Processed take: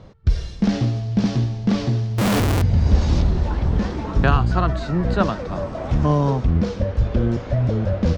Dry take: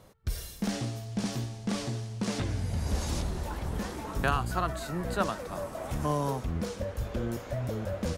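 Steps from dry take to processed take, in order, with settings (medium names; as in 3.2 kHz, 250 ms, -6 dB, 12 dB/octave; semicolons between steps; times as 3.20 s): low-pass 5.4 kHz 24 dB/octave; bass shelf 350 Hz +9.5 dB; 2.18–2.62 s: Schmitt trigger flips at -40 dBFS; trim +6 dB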